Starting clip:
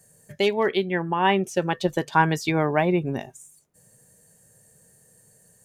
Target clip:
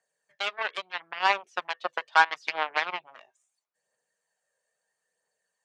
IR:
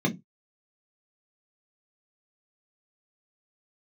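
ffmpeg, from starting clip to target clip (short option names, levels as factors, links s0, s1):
-af "aeval=exprs='0.596*(cos(1*acos(clip(val(0)/0.596,-1,1)))-cos(1*PI/2))+0.106*(cos(7*acos(clip(val(0)/0.596,-1,1)))-cos(7*PI/2))':c=same,aphaser=in_gain=1:out_gain=1:delay=2:decay=0.33:speed=0.76:type=triangular,asuperpass=centerf=1800:order=4:qfactor=0.51"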